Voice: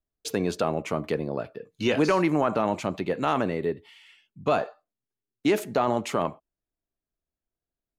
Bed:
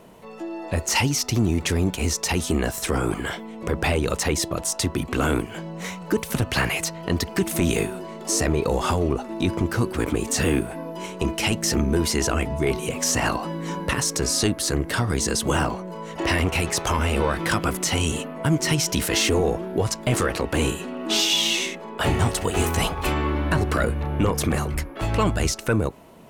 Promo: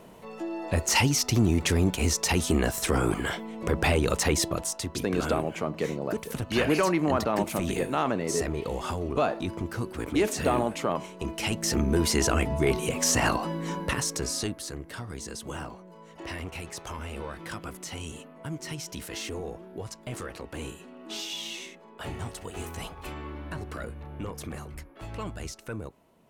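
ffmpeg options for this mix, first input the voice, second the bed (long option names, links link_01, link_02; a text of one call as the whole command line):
ffmpeg -i stem1.wav -i stem2.wav -filter_complex "[0:a]adelay=4700,volume=-2dB[link_01];[1:a]volume=6.5dB,afade=type=out:start_time=4.47:duration=0.34:silence=0.398107,afade=type=in:start_time=11.21:duration=0.96:silence=0.398107,afade=type=out:start_time=13.41:duration=1.35:silence=0.211349[link_02];[link_01][link_02]amix=inputs=2:normalize=0" out.wav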